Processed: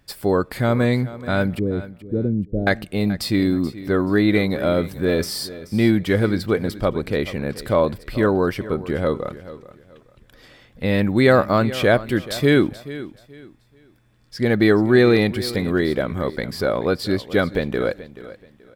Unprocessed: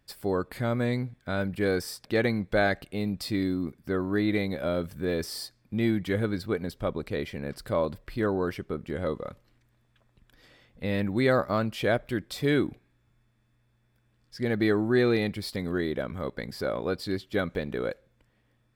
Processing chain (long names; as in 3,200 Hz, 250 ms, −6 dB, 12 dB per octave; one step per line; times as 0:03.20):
0:01.59–0:02.67: Gaussian smoothing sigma 22 samples
repeating echo 430 ms, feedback 27%, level −16 dB
level +9 dB